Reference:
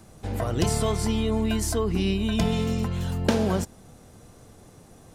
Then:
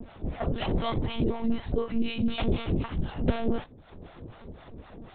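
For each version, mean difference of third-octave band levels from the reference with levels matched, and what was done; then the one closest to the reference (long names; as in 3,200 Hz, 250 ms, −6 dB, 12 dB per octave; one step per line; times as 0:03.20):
10.0 dB: upward compression, threshold −32 dBFS
two-band tremolo in antiphase 4 Hz, depth 100%, crossover 570 Hz
one-pitch LPC vocoder at 8 kHz 230 Hz
level +2 dB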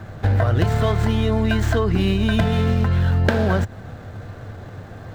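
5.0 dB: running median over 9 samples
graphic EQ with 15 bands 100 Hz +12 dB, 630 Hz +5 dB, 1,600 Hz +12 dB, 4,000 Hz +6 dB, 10,000 Hz −5 dB
downward compressor, threshold −24 dBFS, peak gain reduction 11.5 dB
level +9 dB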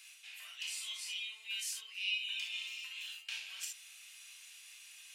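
20.5 dB: reversed playback
downward compressor 5 to 1, threshold −37 dBFS, peak gain reduction 18.5 dB
reversed playback
four-pole ladder high-pass 2,400 Hz, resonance 70%
reverb whose tail is shaped and stops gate 90 ms flat, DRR −2 dB
level +10.5 dB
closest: second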